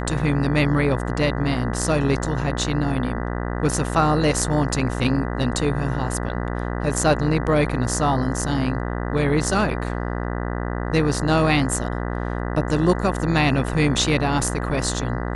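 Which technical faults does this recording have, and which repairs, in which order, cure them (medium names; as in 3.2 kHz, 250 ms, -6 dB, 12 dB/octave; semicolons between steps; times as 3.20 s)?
buzz 60 Hz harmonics 33 -26 dBFS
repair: de-hum 60 Hz, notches 33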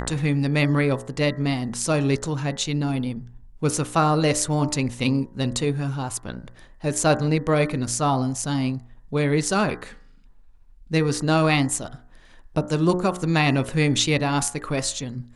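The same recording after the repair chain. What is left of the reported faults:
nothing left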